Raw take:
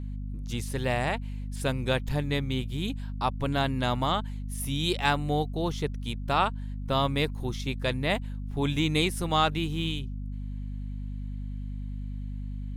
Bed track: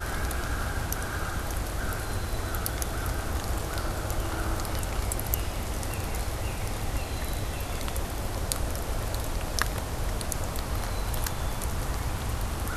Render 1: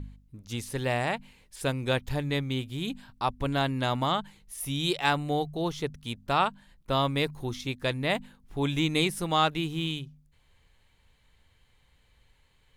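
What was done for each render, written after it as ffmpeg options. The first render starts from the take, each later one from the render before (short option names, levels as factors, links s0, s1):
-af "bandreject=f=50:t=h:w=4,bandreject=f=100:t=h:w=4,bandreject=f=150:t=h:w=4,bandreject=f=200:t=h:w=4,bandreject=f=250:t=h:w=4"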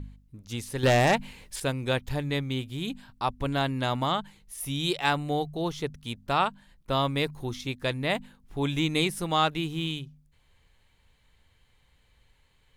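-filter_complex "[0:a]asettb=1/sr,asplit=3[s0][s1][s2];[s0]atrim=end=0.834[s3];[s1]atrim=start=0.83:end=1.6,asetpts=PTS-STARTPTS,afade=t=in:d=0.004:c=qsin,afade=t=out:st=0.766:d=0.004:c=qsin,aeval=exprs='0.178*sin(PI/2*2*val(0)/0.178)':c=same[s4];[s2]atrim=start=1.596[s5];[s3][s4]acrossfade=d=0.004:c1=hsin:c2=qsin[s6];[s6][s5]acrossfade=d=0.004:c1=qsin:c2=hsin"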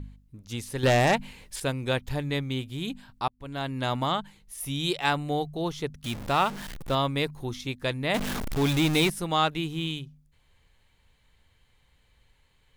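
-filter_complex "[0:a]asettb=1/sr,asplit=3[s0][s1][s2];[s0]atrim=end=6.044[s3];[s1]atrim=start=6.04:end=6.95,asetpts=PTS-STARTPTS,afade=t=in:d=0.004:c=qsin,afade=t=out:st=0.906:d=0.004:c=qsin,aeval=exprs='val(0)+0.5*0.0224*sgn(val(0))':c=same[s4];[s2]atrim=start=6.946[s5];[s3][s4]acrossfade=d=0.004:c1=hsin:c2=qsin[s6];[s6][s5]acrossfade=d=0.004:c1=qsin:c2=hsin,asettb=1/sr,asplit=3[s7][s8][s9];[s7]atrim=end=8.144[s10];[s8]atrim=start=8.14:end=9.1,asetpts=PTS-STARTPTS,afade=t=in:d=0.004:c=qsin,afade=t=out:st=0.956:d=0.004:c=qsin,aeval=exprs='val(0)+0.5*0.0562*sgn(val(0))':c=same[s11];[s9]atrim=start=9.096[s12];[s10][s11]acrossfade=d=0.004:c1=hsin:c2=qsin[s13];[s13][s12]acrossfade=d=0.004:c1=qsin:c2=hsin,asplit=2[s14][s15];[s14]atrim=end=3.28,asetpts=PTS-STARTPTS,afade=t=out:st=3.276:d=0.004:c=hsin[s16];[s15]atrim=start=3.28,asetpts=PTS-STARTPTS,afade=t=in:d=0.61[s17];[s16][s17]concat=n=2:v=0:a=1"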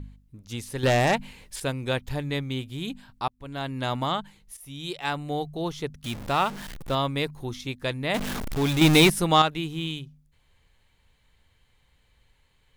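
-filter_complex "[0:a]asettb=1/sr,asplit=3[s0][s1][s2];[s0]atrim=end=8.814[s3];[s1]atrim=start=8.81:end=9.42,asetpts=PTS-STARTPTS,afade=t=in:d=0.004:c=qsin,afade=t=out:st=0.606:d=0.004:c=qsin,acontrast=80[s4];[s2]atrim=start=9.416[s5];[s3][s4]acrossfade=d=0.004:c1=hsin:c2=qsin[s6];[s6][s5]acrossfade=d=0.004:c1=qsin:c2=hsin,asplit=2[s7][s8];[s7]atrim=end=4.57,asetpts=PTS-STARTPTS,afade=t=out:st=4.566:d=0.004:c=hsin:silence=0.237137[s9];[s8]atrim=start=4.57,asetpts=PTS-STARTPTS,afade=t=in:d=0.95:silence=0.237137[s10];[s9][s10]concat=n=2:v=0:a=1"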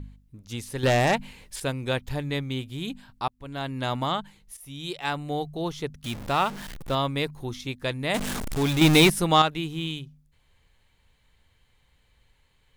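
-filter_complex "[0:a]asettb=1/sr,asplit=3[s0][s1][s2];[s0]atrim=end=7.994[s3];[s1]atrim=start=7.99:end=8.63,asetpts=PTS-STARTPTS,afade=t=in:d=0.004:c=qsin,afade=t=out:st=0.636:d=0.004:c=qsin,equalizer=f=8500:w=1.2:g=6[s4];[s2]atrim=start=8.626[s5];[s3][s4]acrossfade=d=0.004:c1=hsin:c2=qsin[s6];[s6][s5]acrossfade=d=0.004:c1=qsin:c2=hsin"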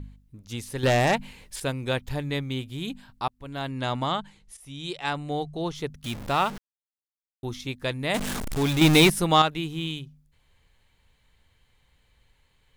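-filter_complex "[0:a]asettb=1/sr,asplit=3[s0][s1][s2];[s0]atrim=end=3.694[s3];[s1]atrim=start=3.69:end=5.75,asetpts=PTS-STARTPTS,afade=t=in:d=0.004:c=qsin,afade=t=out:st=2.056:d=0.004:c=qsin,lowpass=f=9800:w=0.5412,lowpass=f=9800:w=1.3066[s4];[s2]atrim=start=5.746[s5];[s3][s4]acrossfade=d=0.004:c1=hsin:c2=qsin[s6];[s6][s5]acrossfade=d=0.004:c1=qsin:c2=hsin,asplit=3[s7][s8][s9];[s7]atrim=end=6.58,asetpts=PTS-STARTPTS,afade=t=out:st=6.576:d=0.004:c=hsin[s10];[s8]atrim=start=6.58:end=7.43,asetpts=PTS-STARTPTS,volume=0[s11];[s9]atrim=start=7.43,asetpts=PTS-STARTPTS,afade=t=in:d=0.004:c=hsin[s12];[s10][s11][s12]concat=n=3:v=0:a=1"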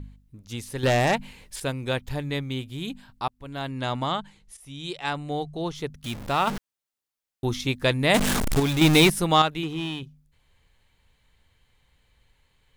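-filter_complex "[0:a]asettb=1/sr,asplit=3[s0][s1][s2];[s0]atrim=end=6.474[s3];[s1]atrim=start=6.47:end=8.6,asetpts=PTS-STARTPTS,afade=t=in:d=0.004:c=qsin,afade=t=out:st=2.126:d=0.004:c=qsin,acontrast=75[s4];[s2]atrim=start=8.596[s5];[s3][s4]acrossfade=d=0.004:c1=hsin:c2=qsin[s6];[s6][s5]acrossfade=d=0.004:c1=qsin:c2=hsin,asettb=1/sr,asplit=3[s7][s8][s9];[s7]atrim=end=9.634[s10];[s8]atrim=start=9.63:end=10.03,asetpts=PTS-STARTPTS,afade=t=in:d=0.004:c=qsin,afade=t=out:st=0.396:d=0.004:c=qsin,asplit=2[s11][s12];[s12]highpass=f=720:p=1,volume=8.91,asoftclip=type=tanh:threshold=0.133[s13];[s11][s13]amix=inputs=2:normalize=0,lowpass=f=1300:p=1,volume=0.501[s14];[s9]atrim=start=10.026[s15];[s10][s14]acrossfade=d=0.004:c1=hsin:c2=qsin[s16];[s16][s15]acrossfade=d=0.004:c1=qsin:c2=hsin"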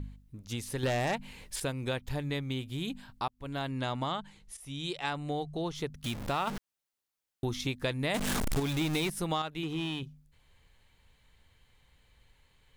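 -af "alimiter=limit=0.266:level=0:latency=1:release=390,acompressor=threshold=0.0251:ratio=2.5"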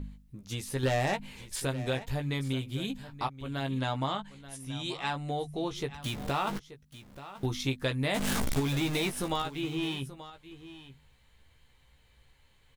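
-filter_complex "[0:a]asplit=2[s0][s1];[s1]adelay=15,volume=0.531[s2];[s0][s2]amix=inputs=2:normalize=0,aecho=1:1:881:0.178"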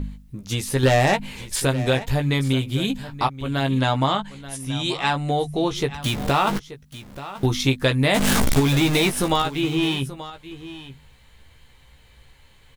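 -af "volume=3.55"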